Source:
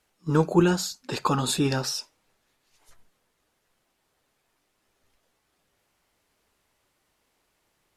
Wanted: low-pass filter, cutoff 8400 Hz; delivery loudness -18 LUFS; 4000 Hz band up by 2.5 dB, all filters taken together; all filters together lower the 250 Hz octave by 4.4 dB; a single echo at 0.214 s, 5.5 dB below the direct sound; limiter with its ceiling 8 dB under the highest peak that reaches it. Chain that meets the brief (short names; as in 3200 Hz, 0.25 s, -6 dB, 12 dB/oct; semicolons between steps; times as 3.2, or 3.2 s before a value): LPF 8400 Hz; bell 250 Hz -7.5 dB; bell 4000 Hz +3.5 dB; limiter -17 dBFS; echo 0.214 s -5.5 dB; gain +9.5 dB